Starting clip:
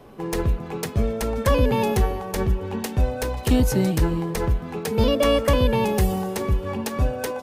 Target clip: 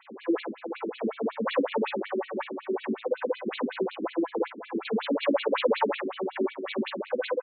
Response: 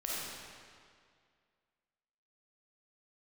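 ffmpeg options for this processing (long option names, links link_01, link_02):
-filter_complex "[0:a]asettb=1/sr,asplit=3[link_01][link_02][link_03];[link_01]atrim=end=5.324[link_04];[link_02]atrim=start=5.32:end=5.95,asetpts=PTS-STARTPTS,afade=type=in:duration=0.004:curve=qsin,afade=type=out:start_time=0.626:duration=0.004:curve=qsin,asplit=2[link_05][link_06];[link_06]highpass=frequency=720:poles=1,volume=19dB,asoftclip=type=tanh:threshold=-7.5dB[link_07];[link_05][link_07]amix=inputs=2:normalize=0,lowpass=frequency=1300:poles=1,volume=-6dB[link_08];[link_03]atrim=start=5.946[link_09];[link_04][link_08]acrossfade=duration=0.004:curve1=hsin:curve2=qsin[link_10];[link_10][link_09]acrossfade=duration=0.004:curve1=qsin:curve2=hsin,asettb=1/sr,asplit=3[link_11][link_12][link_13];[link_11]atrim=end=6.574[link_14];[link_12]atrim=start=6.57:end=6.99,asetpts=PTS-STARTPTS,afade=type=in:duration=0.004:curve=qsin,afade=type=out:start_time=0.416:duration=0.004:curve=qsin,acrusher=bits=5:dc=4:mix=0:aa=0.000001[link_15];[link_13]atrim=start=6.986[link_16];[link_14][link_15]acrossfade=duration=0.004:curve1=hsin:curve2=qsin[link_17];[link_17][link_16]acrossfade=duration=0.004:curve1=qsin:curve2=hsin,asoftclip=type=tanh:threshold=-25.5dB,tremolo=f=17:d=0.46,aecho=1:1:18|50:0.668|0.473,afftfilt=real='re*between(b*sr/1024,270*pow(3200/270,0.5+0.5*sin(2*PI*5.4*pts/sr))/1.41,270*pow(3200/270,0.5+0.5*sin(2*PI*5.4*pts/sr))*1.41)':imag='im*between(b*sr/1024,270*pow(3200/270,0.5+0.5*sin(2*PI*5.4*pts/sr))/1.41,270*pow(3200/270,0.5+0.5*sin(2*PI*5.4*pts/sr))*1.41)':win_size=1024:overlap=0.75,volume=8dB"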